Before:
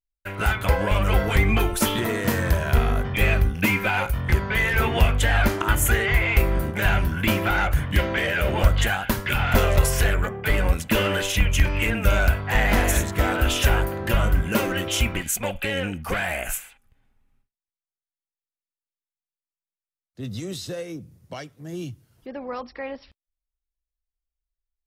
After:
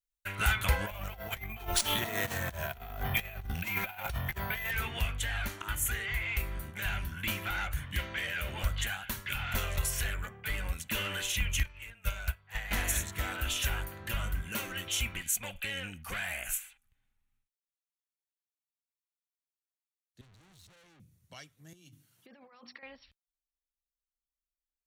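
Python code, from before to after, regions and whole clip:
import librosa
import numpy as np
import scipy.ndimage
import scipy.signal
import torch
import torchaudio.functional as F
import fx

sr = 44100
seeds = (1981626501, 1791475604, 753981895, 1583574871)

y = fx.chain(x, sr, fx.peak_eq(hz=710.0, db=13.0, octaves=0.5),
    fx.over_compress(threshold_db=-24.0, ratio=-0.5),
    fx.resample_bad(factor=3, down='none', up='hold'), at=(0.86, 4.71))
y = fx.chain(y, sr, fx.peak_eq(hz=260.0, db=-12.5, octaves=0.47),
    fx.upward_expand(threshold_db=-27.0, expansion=2.5), at=(11.63, 12.71))
y = fx.chain(y, sr, fx.tilt_eq(slope=-3.0),
    fx.tube_stage(drive_db=45.0, bias=0.65), at=(20.21, 21.0))
y = fx.chain(y, sr, fx.hum_notches(base_hz=50, count=6),
    fx.over_compress(threshold_db=-40.0, ratio=-1.0),
    fx.highpass(hz=130.0, slope=24), at=(21.73, 22.83))
y = fx.tone_stack(y, sr, knobs='5-5-5')
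y = fx.notch(y, sr, hz=5000.0, q=8.6)
y = fx.rider(y, sr, range_db=10, speed_s=2.0)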